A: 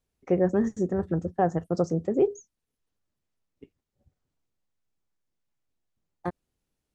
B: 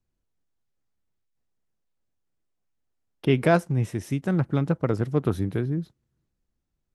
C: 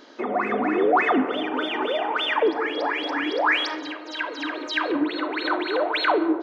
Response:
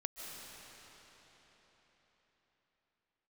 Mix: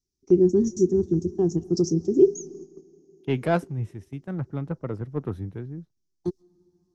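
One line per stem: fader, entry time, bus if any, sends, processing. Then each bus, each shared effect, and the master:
+1.5 dB, 0.00 s, send −15.5 dB, drawn EQ curve 240 Hz 0 dB, 380 Hz +7 dB, 550 Hz −25 dB, 940 Hz −15 dB, 1,800 Hz −26 dB, 5,700 Hz +14 dB, 8,900 Hz −4 dB
−6.0 dB, 0.00 s, no send, high-shelf EQ 2,900 Hz −10 dB; soft clipping −11 dBFS, distortion −21 dB; multiband upward and downward expander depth 100%
muted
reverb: on, RT60 4.5 s, pre-delay 110 ms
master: noise gate −40 dBFS, range −8 dB

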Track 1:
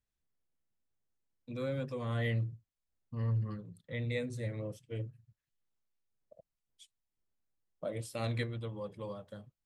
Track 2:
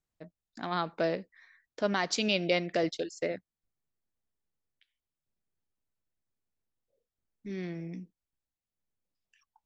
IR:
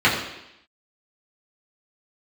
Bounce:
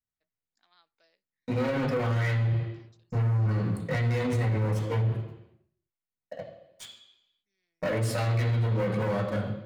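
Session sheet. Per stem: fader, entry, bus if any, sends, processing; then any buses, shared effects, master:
−3.0 dB, 0.00 s, send −15.5 dB, leveller curve on the samples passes 5
−12.5 dB, 0.00 s, no send, first difference; automatic ducking −10 dB, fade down 1.50 s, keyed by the first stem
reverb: on, RT60 0.85 s, pre-delay 3 ms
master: brickwall limiter −20 dBFS, peak gain reduction 10 dB

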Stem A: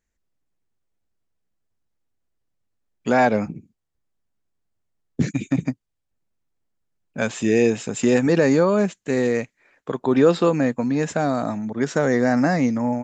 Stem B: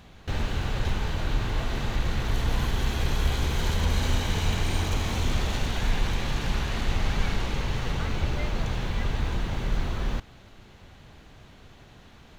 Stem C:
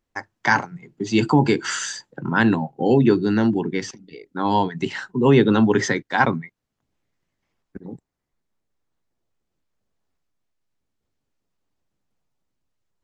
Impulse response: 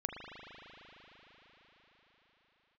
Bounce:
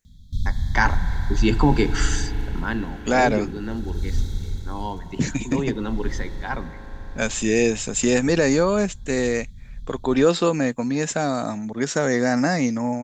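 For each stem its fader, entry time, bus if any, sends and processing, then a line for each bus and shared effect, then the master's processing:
−2.0 dB, 0.00 s, no send, high-shelf EQ 3,200 Hz +11.5 dB
−4.5 dB, 0.05 s, no send, brick-wall band-stop 270–3,200 Hz; low-shelf EQ 120 Hz +12 dB; automatic ducking −16 dB, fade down 1.00 s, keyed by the first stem
0:02.26 −4 dB → 0:02.84 −13.5 dB, 0.30 s, send −9.5 dB, no processing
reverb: on, RT60 5.4 s, pre-delay 38 ms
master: no processing

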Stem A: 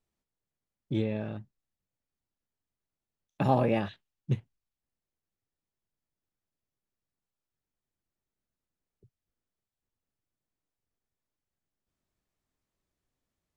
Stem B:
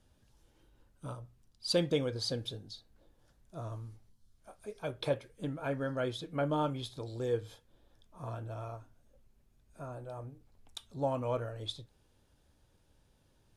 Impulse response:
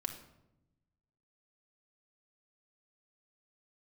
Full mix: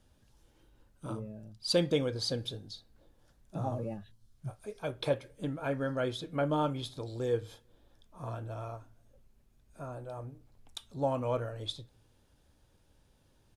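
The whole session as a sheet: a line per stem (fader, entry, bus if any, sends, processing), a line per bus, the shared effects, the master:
−11.5 dB, 0.15 s, no send, expanding power law on the bin magnitudes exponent 1.7
+1.0 dB, 0.00 s, send −20 dB, no processing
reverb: on, RT60 0.90 s, pre-delay 4 ms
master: no processing

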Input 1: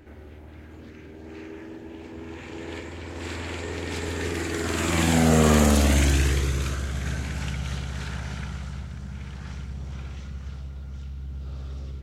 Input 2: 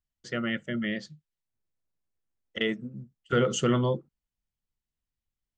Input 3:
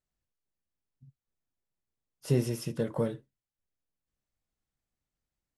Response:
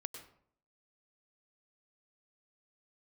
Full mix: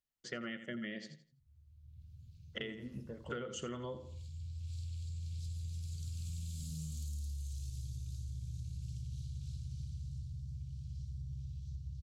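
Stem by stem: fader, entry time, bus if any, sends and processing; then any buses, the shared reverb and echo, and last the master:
−18.5 dB, 1.40 s, bus A, no send, echo send −9 dB, elliptic band-stop filter 130–4,300 Hz, stop band 40 dB; automatic gain control gain up to 14 dB
−3.0 dB, 0.00 s, no bus, no send, echo send −13 dB, low-shelf EQ 95 Hz −12 dB
−16.0 dB, 0.30 s, bus A, no send, echo send −16.5 dB, no processing
bus A: 0.0 dB, low-pass filter 2,600 Hz 24 dB per octave; brickwall limiter −30.5 dBFS, peak gain reduction 7 dB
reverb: not used
echo: repeating echo 83 ms, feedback 26%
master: downward compressor 16 to 1, threshold −38 dBFS, peak gain reduction 15.5 dB

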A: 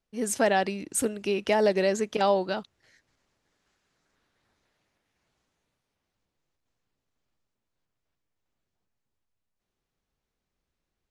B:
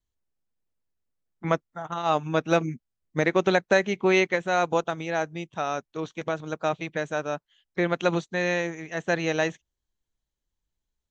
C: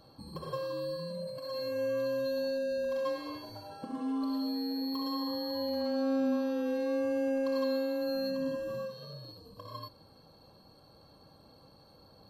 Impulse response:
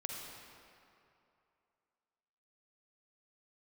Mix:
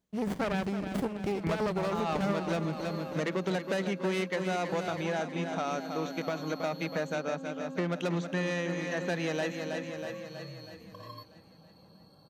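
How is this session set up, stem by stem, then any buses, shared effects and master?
+2.0 dB, 0.00 s, no send, echo send −13 dB, windowed peak hold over 33 samples
+1.5 dB, 0.00 s, no send, echo send −9 dB, soft clipping −22.5 dBFS, distortion −9 dB; high-pass filter 210 Hz
−1.5 dB, 1.35 s, no send, no echo send, downward compressor, threshold −39 dBFS, peak gain reduction 12 dB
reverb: not used
echo: repeating echo 321 ms, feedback 56%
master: high-pass filter 57 Hz; parametric band 180 Hz +11 dB 0.46 octaves; downward compressor 2.5 to 1, threshold −30 dBFS, peak gain reduction 9 dB

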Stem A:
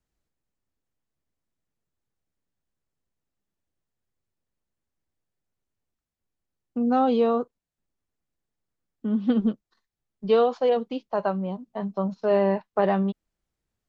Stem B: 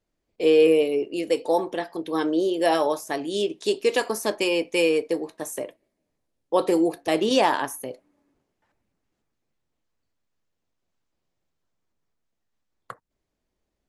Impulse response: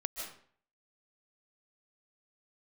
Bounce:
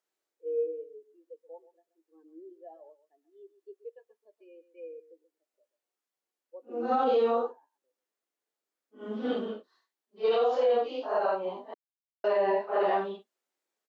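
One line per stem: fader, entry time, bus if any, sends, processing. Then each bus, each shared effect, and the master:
+0.5 dB, 0.00 s, muted 0:11.74–0:12.24, no send, no echo send, random phases in long frames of 200 ms
−15.0 dB, 0.00 s, no send, echo send −15 dB, every bin expanded away from the loudest bin 2.5 to 1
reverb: not used
echo: single-tap delay 129 ms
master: high-pass filter 340 Hz 24 dB per octave; brickwall limiter −18 dBFS, peak gain reduction 8.5 dB

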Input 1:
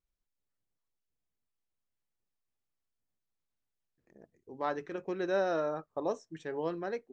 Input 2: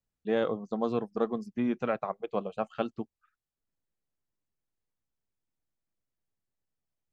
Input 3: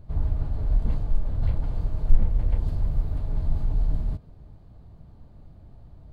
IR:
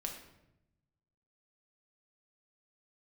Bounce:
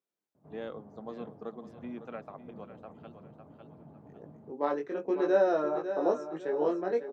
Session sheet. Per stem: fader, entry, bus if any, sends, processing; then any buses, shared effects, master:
−0.5 dB, 0.00 s, no send, echo send −9.5 dB, parametric band 430 Hz +9.5 dB 2.8 octaves; chorus effect 0.94 Hz, delay 19 ms, depth 2.4 ms
−12.0 dB, 0.25 s, no send, echo send −12 dB, automatic ducking −16 dB, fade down 1.90 s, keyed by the first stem
−9.5 dB, 0.35 s, no send, no echo send, low-pass filter 1,000 Hz 12 dB per octave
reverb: not used
echo: repeating echo 553 ms, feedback 35%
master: high-pass filter 180 Hz 24 dB per octave

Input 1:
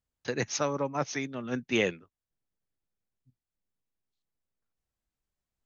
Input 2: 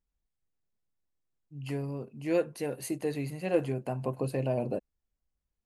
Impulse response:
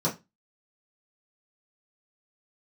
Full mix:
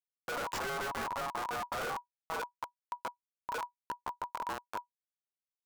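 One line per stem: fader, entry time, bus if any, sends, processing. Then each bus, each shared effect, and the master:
−1.5 dB, 0.00 s, send −9 dB, no echo send, high-pass filter 86 Hz 6 dB per octave; automatic ducking −7 dB, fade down 1.50 s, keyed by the second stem
−13.5 dB, 0.00 s, send −13 dB, echo send −10.5 dB, parametric band 740 Hz +5.5 dB 1.4 octaves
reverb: on, pre-delay 3 ms
echo: single-tap delay 890 ms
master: low-shelf EQ 110 Hz −8.5 dB; comparator with hysteresis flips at −31 dBFS; ring modulation 970 Hz

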